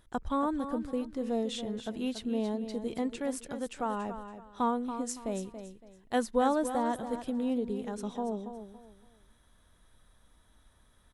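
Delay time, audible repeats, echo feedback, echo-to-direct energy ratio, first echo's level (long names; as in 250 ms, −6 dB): 281 ms, 3, 28%, −9.5 dB, −10.0 dB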